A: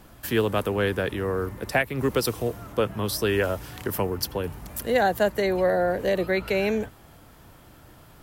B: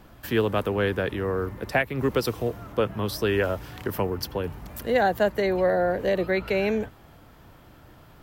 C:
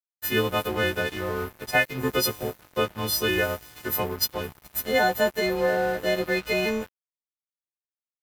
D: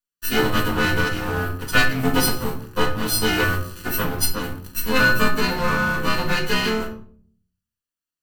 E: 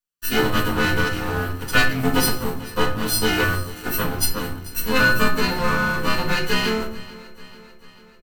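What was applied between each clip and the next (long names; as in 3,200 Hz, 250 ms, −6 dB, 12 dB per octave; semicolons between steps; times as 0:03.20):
parametric band 9,800 Hz −9 dB 1.4 octaves
every partial snapped to a pitch grid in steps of 3 semitones; dead-zone distortion −36 dBFS
lower of the sound and its delayed copy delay 0.68 ms; convolution reverb RT60 0.50 s, pre-delay 4 ms, DRR 2 dB; level +4 dB
repeating echo 441 ms, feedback 59%, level −19.5 dB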